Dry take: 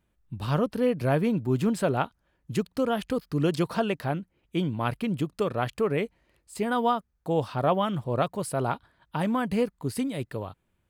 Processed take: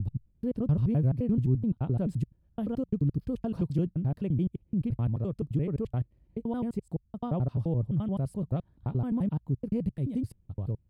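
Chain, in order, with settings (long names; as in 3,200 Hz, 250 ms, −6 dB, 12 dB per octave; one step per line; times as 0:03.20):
slices reordered back to front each 86 ms, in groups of 5
drawn EQ curve 120 Hz 0 dB, 1,500 Hz −29 dB, 2,100 Hz −27 dB
in parallel at 0 dB: downward compressor, threshold −40 dBFS, peak gain reduction 14 dB
on the sum: level +3 dB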